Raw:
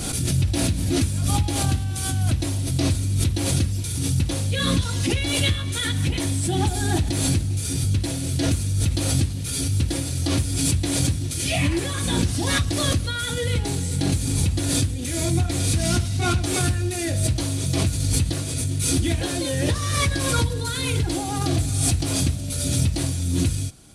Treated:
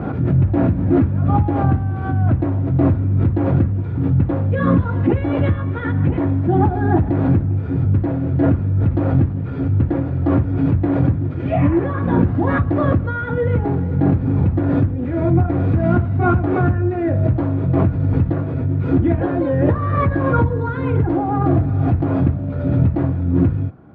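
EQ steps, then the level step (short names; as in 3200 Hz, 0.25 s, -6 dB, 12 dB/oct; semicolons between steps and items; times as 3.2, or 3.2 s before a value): HPF 99 Hz; LPF 1400 Hz 24 dB/oct; +8.5 dB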